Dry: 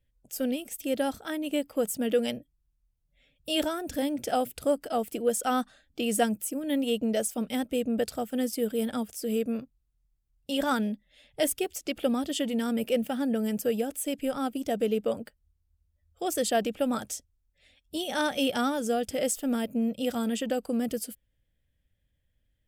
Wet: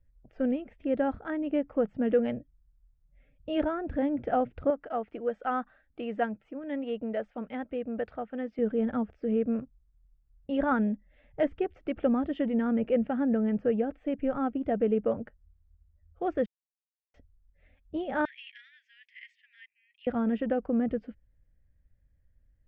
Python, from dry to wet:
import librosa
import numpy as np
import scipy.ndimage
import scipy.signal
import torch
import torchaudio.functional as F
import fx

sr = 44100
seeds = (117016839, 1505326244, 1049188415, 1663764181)

y = fx.low_shelf(x, sr, hz=410.0, db=-11.5, at=(4.7, 8.59))
y = fx.steep_highpass(y, sr, hz=1800.0, slope=96, at=(18.25, 20.07))
y = fx.edit(y, sr, fx.silence(start_s=16.46, length_s=0.68), tone=tone)
y = scipy.signal.sosfilt(scipy.signal.cheby2(4, 80, 9800.0, 'lowpass', fs=sr, output='sos'), y)
y = fx.low_shelf(y, sr, hz=95.0, db=11.5)